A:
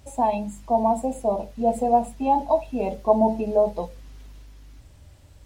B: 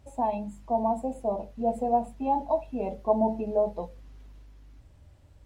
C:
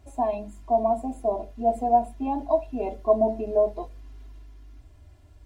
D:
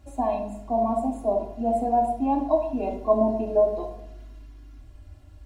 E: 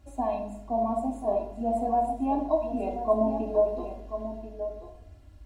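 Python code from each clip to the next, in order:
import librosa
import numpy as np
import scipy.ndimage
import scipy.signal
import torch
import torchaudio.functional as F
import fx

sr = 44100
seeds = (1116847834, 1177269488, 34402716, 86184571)

y1 = fx.high_shelf(x, sr, hz=2700.0, db=-9.0)
y1 = y1 * 10.0 ** (-5.0 / 20.0)
y2 = y1 + 0.91 * np.pad(y1, (int(2.9 * sr / 1000.0), 0))[:len(y1)]
y3 = fx.room_shoebox(y2, sr, seeds[0], volume_m3=2000.0, walls='furnished', distance_m=2.3)
y4 = y3 + 10.0 ** (-10.5 / 20.0) * np.pad(y3, (int(1037 * sr / 1000.0), 0))[:len(y3)]
y4 = y4 * 10.0 ** (-3.5 / 20.0)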